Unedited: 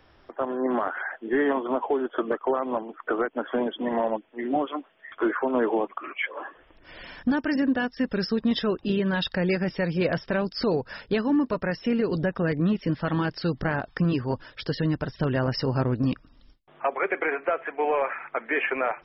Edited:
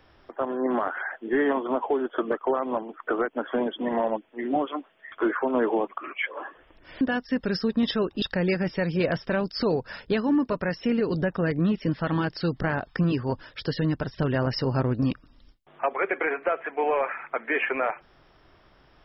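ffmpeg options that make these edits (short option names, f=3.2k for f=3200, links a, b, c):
-filter_complex "[0:a]asplit=3[a][b][c];[a]atrim=end=7.012[d];[b]atrim=start=7.688:end=8.902[e];[c]atrim=start=9.228[f];[d][e]acrossfade=d=0.004:c1=hsin:c2=hsin[g];[g][f]acrossfade=d=0.004:c1=hsin:c2=hsin"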